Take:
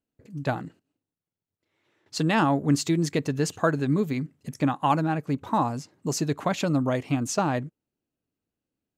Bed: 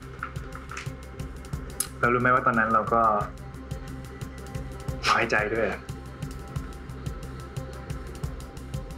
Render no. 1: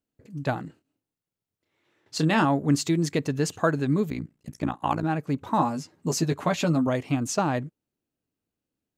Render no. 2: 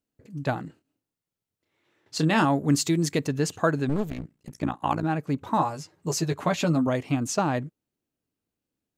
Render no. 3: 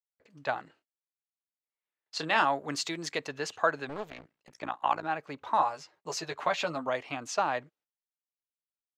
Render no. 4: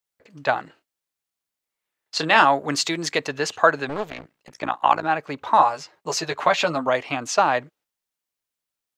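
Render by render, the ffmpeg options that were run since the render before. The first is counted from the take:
-filter_complex "[0:a]asettb=1/sr,asplit=3[s0][s1][s2];[s0]atrim=end=0.664[s3];[s1]atrim=start=0.66:end=2.45,asetpts=PTS-STARTPTS,afade=t=in:d=0.004:c=qsin,afade=t=out:st=1.786:d=0.004:c=qsin,asplit=2[s4][s5];[s5]adelay=26,volume=0.398[s6];[s4][s6]amix=inputs=2:normalize=0,atrim=end_sample=78939[s7];[s2]atrim=start=2.446[s8];[s3][s7]acrossfade=d=0.004:c1=hsin:c2=qsin[s9];[s9][s8]acrossfade=d=0.004:c1=qsin:c2=hsin,asettb=1/sr,asplit=3[s10][s11][s12];[s10]atrim=end=4.104[s13];[s11]atrim=start=4.1:end=5.04,asetpts=PTS-STARTPTS,afade=t=in:d=0.004:c=qsin,afade=t=out:st=0.936:d=0.004:c=qsin,tremolo=f=58:d=0.919[s14];[s12]atrim=start=5.036[s15];[s13][s14]acrossfade=d=0.004:c1=hsin:c2=qsin[s16];[s16][s15]acrossfade=d=0.004:c1=qsin:c2=hsin,asettb=1/sr,asplit=3[s17][s18][s19];[s17]atrim=end=5.574[s20];[s18]atrim=start=5.57:end=6.87,asetpts=PTS-STARTPTS,afade=t=in:d=0.004:c=qsin,afade=t=out:st=1.296:d=0.004:c=qsin,asplit=2[s21][s22];[s22]adelay=12,volume=0.596[s23];[s21][s23]amix=inputs=2:normalize=0,atrim=end_sample=57330[s24];[s19]atrim=start=6.866[s25];[s20][s24]acrossfade=d=0.004:c1=hsin:c2=qsin[s26];[s26][s25]acrossfade=d=0.004:c1=qsin:c2=hsin"
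-filter_complex "[0:a]asettb=1/sr,asplit=3[s0][s1][s2];[s0]atrim=end=2.354[s3];[s1]atrim=start=2.35:end=3.27,asetpts=PTS-STARTPTS,afade=t=in:d=0.004:c=qsin,afade=t=out:st=0.916:d=0.004:c=qsin,highshelf=f=5800:g=6.5[s4];[s2]atrim=start=3.266[s5];[s3][s4]acrossfade=d=0.004:c1=hsin:c2=qsin[s6];[s6][s5]acrossfade=d=0.004:c1=qsin:c2=hsin,asettb=1/sr,asplit=3[s7][s8][s9];[s7]atrim=end=3.894[s10];[s8]atrim=start=3.89:end=4.55,asetpts=PTS-STARTPTS,afade=t=in:d=0.004:c=qsin,afade=t=out:st=0.656:d=0.004:c=qsin,aeval=exprs='clip(val(0),-1,0.015)':c=same[s11];[s9]atrim=start=4.546[s12];[s10][s11]acrossfade=d=0.004:c1=hsin:c2=qsin[s13];[s13][s12]acrossfade=d=0.004:c1=qsin:c2=hsin,asettb=1/sr,asplit=3[s14][s15][s16];[s14]atrim=end=5.574[s17];[s15]atrim=start=5.57:end=6.38,asetpts=PTS-STARTPTS,afade=t=in:d=0.004:c=qsin,afade=t=out:st=0.806:d=0.004:c=qsin,equalizer=f=240:t=o:w=0.35:g=-14.5[s18];[s16]atrim=start=6.376[s19];[s17][s18]acrossfade=d=0.004:c1=hsin:c2=qsin[s20];[s20][s19]acrossfade=d=0.004:c1=qsin:c2=hsin"
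-filter_complex "[0:a]agate=range=0.0562:threshold=0.00178:ratio=16:detection=peak,acrossover=split=520 5400:gain=0.0891 1 0.141[s0][s1][s2];[s0][s1][s2]amix=inputs=3:normalize=0"
-af "volume=3.16"

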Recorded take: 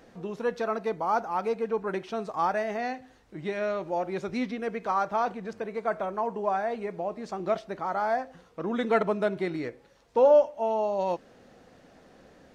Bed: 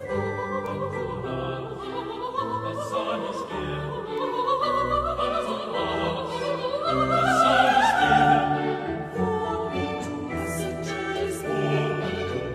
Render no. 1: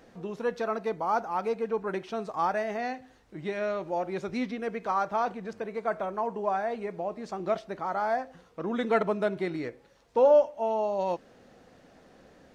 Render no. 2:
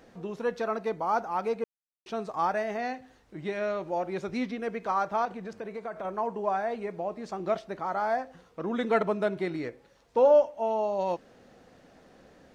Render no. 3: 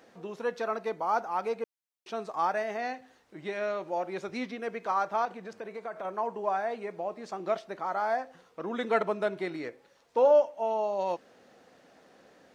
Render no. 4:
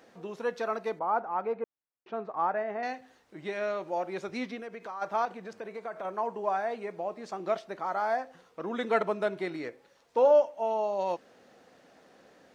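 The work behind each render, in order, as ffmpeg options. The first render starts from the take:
-af "volume=0.891"
-filter_complex "[0:a]asettb=1/sr,asplit=3[s0][s1][s2];[s0]atrim=end=5.254[s3];[s1]atrim=start=5.25:end=6.05,asetpts=PTS-STARTPTS,afade=t=in:d=0.004:c=qsin,afade=t=out:st=0.796:d=0.004:c=qsin,acompressor=threshold=0.0224:ratio=4:attack=3.2:release=140:knee=1:detection=peak[s4];[s2]atrim=start=6.046[s5];[s3][s4]acrossfade=d=0.004:c1=hsin:c2=qsin[s6];[s6][s5]acrossfade=d=0.004:c1=qsin:c2=hsin,asplit=3[s7][s8][s9];[s7]atrim=end=1.64,asetpts=PTS-STARTPTS,afade=t=out:st=1.636:d=0.004:c=hsin[s10];[s8]atrim=start=1.64:end=2.06,asetpts=PTS-STARTPTS,volume=0[s11];[s9]atrim=start=2.06,asetpts=PTS-STARTPTS,afade=t=in:d=0.004:c=hsin[s12];[s10][s11][s12]concat=n=3:v=0:a=1"
-af "highpass=f=360:p=1"
-filter_complex "[0:a]asettb=1/sr,asplit=3[s0][s1][s2];[s0]atrim=end=0.994[s3];[s1]atrim=start=0.99:end=2.83,asetpts=PTS-STARTPTS,afade=t=in:d=0.004:c=qsin,afade=t=out:st=1.836:d=0.004:c=qsin,lowpass=1700[s4];[s2]atrim=start=2.826[s5];[s3][s4]acrossfade=d=0.004:c1=hsin:c2=qsin[s6];[s6][s5]acrossfade=d=0.004:c1=qsin:c2=hsin,asplit=3[s7][s8][s9];[s7]afade=t=out:st=4.6:d=0.02[s10];[s8]acompressor=threshold=0.0112:ratio=3:attack=3.2:release=140:knee=1:detection=peak,afade=t=in:st=4.6:d=0.02,afade=t=out:st=5.01:d=0.02[s11];[s9]afade=t=in:st=5.01:d=0.02[s12];[s10][s11][s12]amix=inputs=3:normalize=0"

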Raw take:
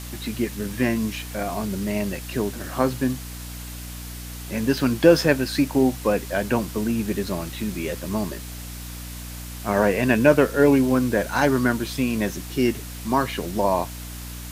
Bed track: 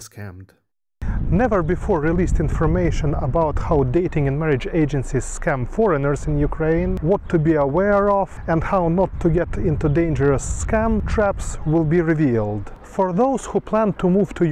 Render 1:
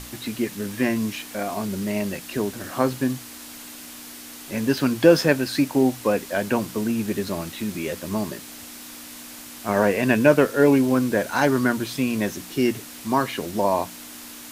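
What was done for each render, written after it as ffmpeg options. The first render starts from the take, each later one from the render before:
-af "bandreject=f=60:t=h:w=6,bandreject=f=120:t=h:w=6,bandreject=f=180:t=h:w=6"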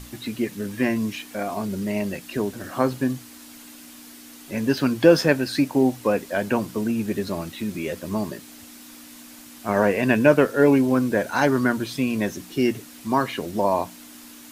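-af "afftdn=nr=6:nf=-40"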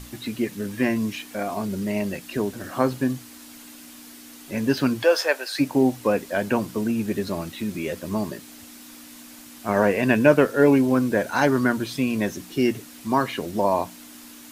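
-filter_complex "[0:a]asplit=3[s0][s1][s2];[s0]afade=t=out:st=5.02:d=0.02[s3];[s1]highpass=f=510:w=0.5412,highpass=f=510:w=1.3066,afade=t=in:st=5.02:d=0.02,afade=t=out:st=5.59:d=0.02[s4];[s2]afade=t=in:st=5.59:d=0.02[s5];[s3][s4][s5]amix=inputs=3:normalize=0"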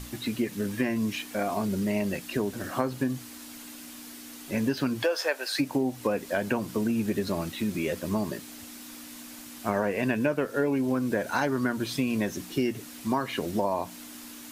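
-af "acompressor=threshold=0.0708:ratio=6"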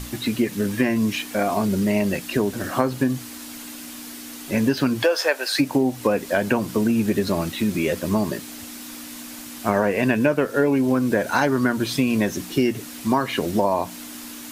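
-af "volume=2.24"

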